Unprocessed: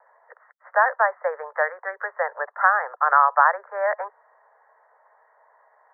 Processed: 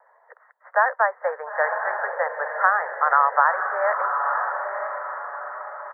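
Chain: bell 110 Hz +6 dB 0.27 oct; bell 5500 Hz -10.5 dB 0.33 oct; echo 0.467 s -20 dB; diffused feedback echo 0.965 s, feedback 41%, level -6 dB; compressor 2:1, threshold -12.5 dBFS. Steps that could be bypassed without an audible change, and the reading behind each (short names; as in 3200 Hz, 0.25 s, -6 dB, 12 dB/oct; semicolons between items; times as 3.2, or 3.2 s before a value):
bell 110 Hz: input band starts at 380 Hz; bell 5500 Hz: input band ends at 2200 Hz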